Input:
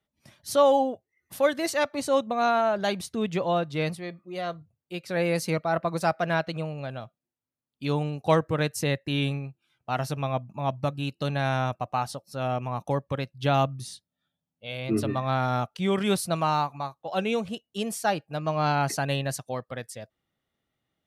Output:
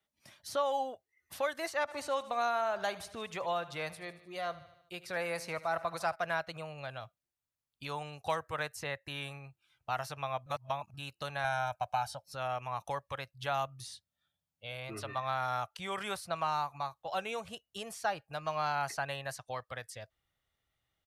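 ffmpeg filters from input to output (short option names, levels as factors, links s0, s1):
-filter_complex "[0:a]asplit=3[s0][s1][s2];[s0]afade=t=out:st=1.87:d=0.02[s3];[s1]aecho=1:1:76|152|228|304|380:0.126|0.0718|0.0409|0.0233|0.0133,afade=t=in:st=1.87:d=0.02,afade=t=out:st=6.14:d=0.02[s4];[s2]afade=t=in:st=6.14:d=0.02[s5];[s3][s4][s5]amix=inputs=3:normalize=0,asettb=1/sr,asplit=3[s6][s7][s8];[s6]atrim=end=11.444[s9];[s7]atrim=start=11.44:end=12.26,asetpts=PTS-STARTPTS,afade=t=in:d=0.004:c=qsin,afade=t=out:st=0.816:d=0.004:c=qsin,aecho=1:1:1.3:0.85,atrim=end_sample=36162[s10];[s8]atrim=start=12.256[s11];[s9][s10]acrossfade=d=0.004:c1=hsin:c2=qsin[s12];[s12][s11]acrossfade=d=0.004:c1=qsin:c2=hsin,asplit=3[s13][s14][s15];[s13]atrim=end=10.462[s16];[s14]atrim=start=10.458:end=10.942,asetpts=PTS-STARTPTS,areverse[s17];[s15]atrim=start=10.938[s18];[s16][s17]acrossfade=d=0.004:c1=hsin:c2=hsin[s19];[s19][s18]acrossfade=d=0.004:c1=hsin:c2=hsin,asubboost=boost=8:cutoff=80,acrossover=split=590|1900|6100[s20][s21][s22][s23];[s20]acompressor=threshold=0.0112:ratio=4[s24];[s21]acompressor=threshold=0.0398:ratio=4[s25];[s22]acompressor=threshold=0.00398:ratio=4[s26];[s23]acompressor=threshold=0.00251:ratio=4[s27];[s24][s25][s26][s27]amix=inputs=4:normalize=0,lowshelf=f=470:g=-10"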